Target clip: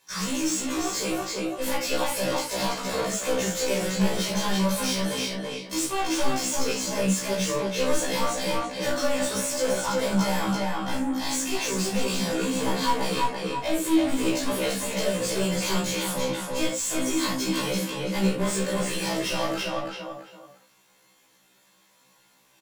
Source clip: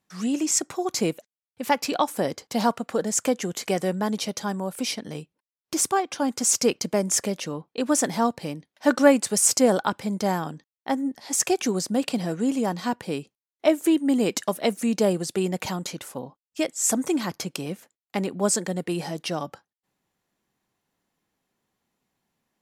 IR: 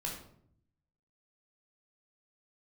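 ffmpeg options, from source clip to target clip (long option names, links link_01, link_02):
-filter_complex "[0:a]highshelf=frequency=4300:gain=10.5,acompressor=threshold=-23dB:ratio=6,asplit=2[link_01][link_02];[link_02]adelay=335,lowpass=frequency=2900:poles=1,volume=-5dB,asplit=2[link_03][link_04];[link_04]adelay=335,lowpass=frequency=2900:poles=1,volume=0.26,asplit=2[link_05][link_06];[link_06]adelay=335,lowpass=frequency=2900:poles=1,volume=0.26[link_07];[link_01][link_03][link_05][link_07]amix=inputs=4:normalize=0,asplit=2[link_08][link_09];[link_09]highpass=frequency=720:poles=1,volume=28dB,asoftclip=type=tanh:threshold=-14.5dB[link_10];[link_08][link_10]amix=inputs=2:normalize=0,lowpass=frequency=5900:poles=1,volume=-6dB[link_11];[1:a]atrim=start_sample=2205,atrim=end_sample=4410[link_12];[link_11][link_12]afir=irnorm=-1:irlink=0,afftfilt=real='re*1.73*eq(mod(b,3),0)':imag='im*1.73*eq(mod(b,3),0)':win_size=2048:overlap=0.75,volume=-3.5dB"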